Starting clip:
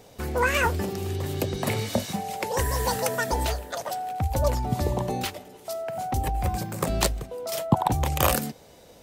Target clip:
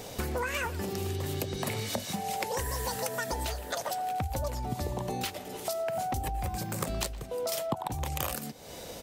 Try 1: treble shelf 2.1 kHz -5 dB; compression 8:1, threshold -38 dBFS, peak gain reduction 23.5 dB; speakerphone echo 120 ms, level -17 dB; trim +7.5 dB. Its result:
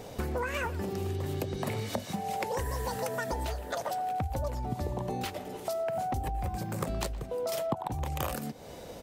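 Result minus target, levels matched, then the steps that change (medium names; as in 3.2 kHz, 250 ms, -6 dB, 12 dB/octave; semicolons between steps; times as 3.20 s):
4 kHz band -4.5 dB
change: treble shelf 2.1 kHz +4 dB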